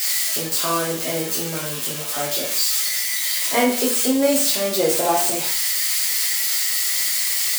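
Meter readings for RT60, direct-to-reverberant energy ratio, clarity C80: 0.50 s, -4.0 dB, 9.5 dB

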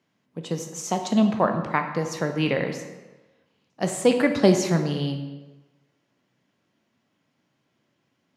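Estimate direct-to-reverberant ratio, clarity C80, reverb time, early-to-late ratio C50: 5.5 dB, 9.5 dB, 1.1 s, 8.0 dB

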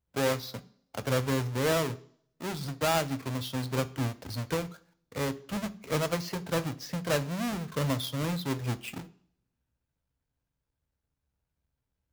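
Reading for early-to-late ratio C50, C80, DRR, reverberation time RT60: 19.0 dB, 22.5 dB, 10.5 dB, 0.55 s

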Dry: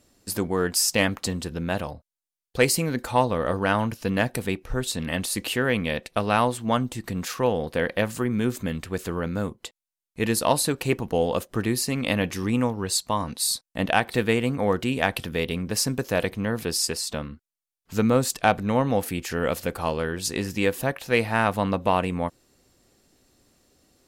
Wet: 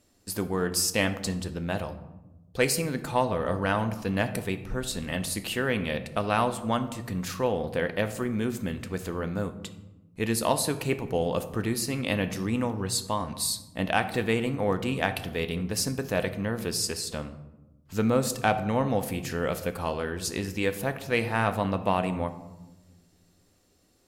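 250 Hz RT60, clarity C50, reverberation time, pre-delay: 1.7 s, 12.5 dB, 1.0 s, 10 ms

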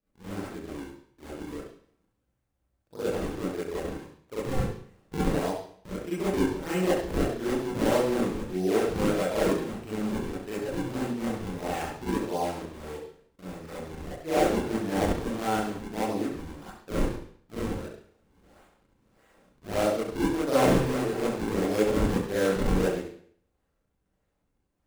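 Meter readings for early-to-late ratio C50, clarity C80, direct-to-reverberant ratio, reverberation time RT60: -4.0 dB, 5.0 dB, -11.0 dB, not exponential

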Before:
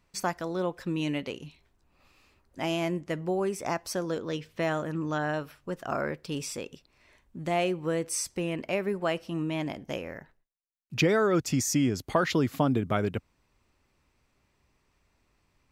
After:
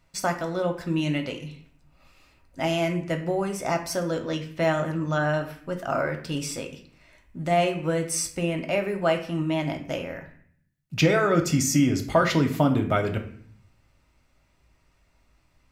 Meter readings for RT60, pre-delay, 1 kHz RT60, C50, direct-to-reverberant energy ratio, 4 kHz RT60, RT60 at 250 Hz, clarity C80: 0.55 s, 3 ms, 0.60 s, 10.0 dB, 4.0 dB, 0.45 s, 0.85 s, 13.5 dB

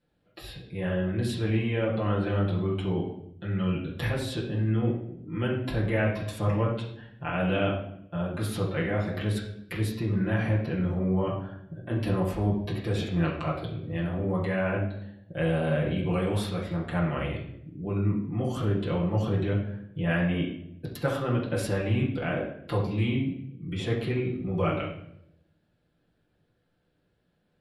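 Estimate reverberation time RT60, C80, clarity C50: 0.75 s, 8.0 dB, 4.5 dB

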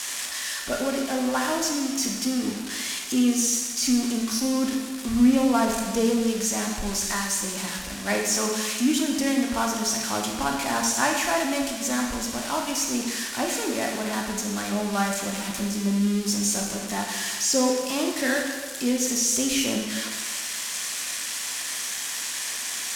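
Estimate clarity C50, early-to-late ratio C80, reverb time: 3.0 dB, 5.0 dB, 1.4 s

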